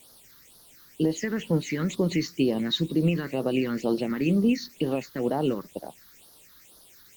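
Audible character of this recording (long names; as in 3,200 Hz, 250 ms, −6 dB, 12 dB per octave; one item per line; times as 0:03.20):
a quantiser's noise floor 8 bits, dither triangular
phaser sweep stages 6, 2.1 Hz, lowest notch 670–2,400 Hz
Opus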